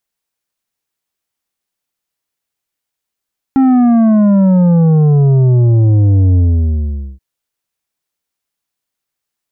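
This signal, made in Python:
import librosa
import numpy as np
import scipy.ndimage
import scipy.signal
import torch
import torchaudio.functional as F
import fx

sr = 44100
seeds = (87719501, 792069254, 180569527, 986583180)

y = fx.sub_drop(sr, level_db=-7.0, start_hz=270.0, length_s=3.63, drive_db=8.0, fade_s=0.83, end_hz=65.0)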